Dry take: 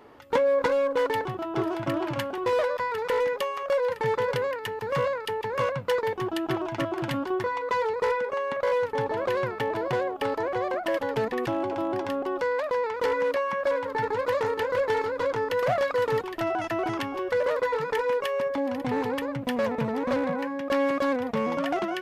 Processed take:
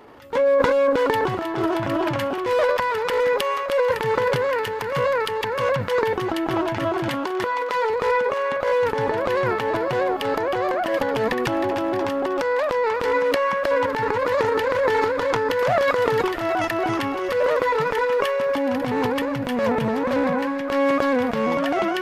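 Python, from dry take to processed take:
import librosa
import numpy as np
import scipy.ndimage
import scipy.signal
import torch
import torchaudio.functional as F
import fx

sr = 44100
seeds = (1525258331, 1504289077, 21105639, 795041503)

y = fx.highpass(x, sr, hz=330.0, slope=6, at=(7.09, 7.9))
y = fx.transient(y, sr, attack_db=-8, sustain_db=10)
y = fx.echo_wet_highpass(y, sr, ms=313, feedback_pct=65, hz=1400.0, wet_db=-8.5)
y = F.gain(torch.from_numpy(y), 5.0).numpy()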